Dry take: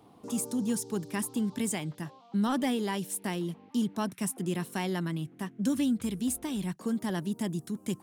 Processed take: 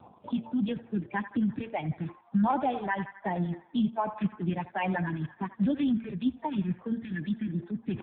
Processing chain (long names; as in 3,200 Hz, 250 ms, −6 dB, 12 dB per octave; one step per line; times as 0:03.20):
spectral magnitudes quantised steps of 30 dB
reverb reduction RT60 1.5 s
comb filter 1.2 ms, depth 65%
two-band tremolo in antiphase 9.4 Hz, depth 50%, crossover 440 Hz
feedback echo with a band-pass in the loop 84 ms, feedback 73%, band-pass 1,200 Hz, level −11.5 dB
in parallel at −1 dB: brickwall limiter −27.5 dBFS, peak gain reduction 7 dB
on the sum: hum removal 114.1 Hz, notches 4
reversed playback
upward compression, threshold −30 dBFS
reversed playback
noise reduction from a noise print of the clip's start 6 dB
healed spectral selection 0:07.05–0:07.61, 350–1,400 Hz
level +2 dB
AMR narrowband 5.9 kbit/s 8,000 Hz